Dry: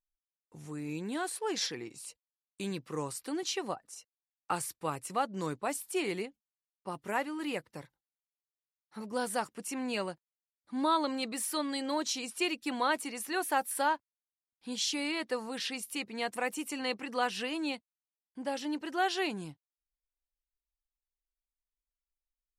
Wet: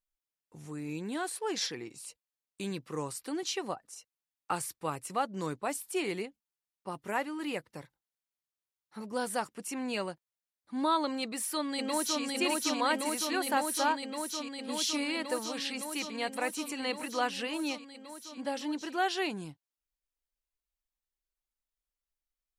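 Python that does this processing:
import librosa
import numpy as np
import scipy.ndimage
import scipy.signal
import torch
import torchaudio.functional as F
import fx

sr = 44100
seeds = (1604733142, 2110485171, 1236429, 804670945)

y = fx.echo_throw(x, sr, start_s=11.22, length_s=1.02, ms=560, feedback_pct=85, wet_db=-1.0)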